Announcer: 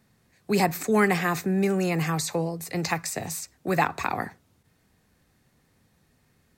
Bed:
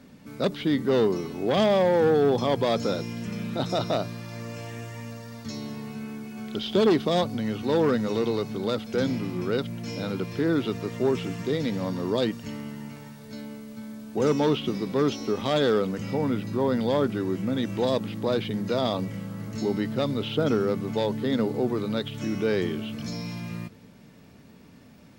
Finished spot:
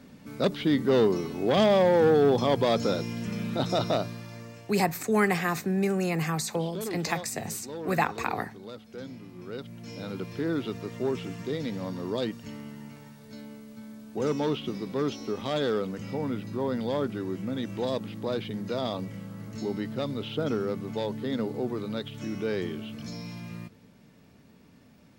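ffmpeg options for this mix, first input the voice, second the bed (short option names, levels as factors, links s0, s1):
-filter_complex "[0:a]adelay=4200,volume=0.75[s0];[1:a]volume=3.16,afade=t=out:st=3.89:d=0.84:silence=0.177828,afade=t=in:st=9.34:d=0.89:silence=0.316228[s1];[s0][s1]amix=inputs=2:normalize=0"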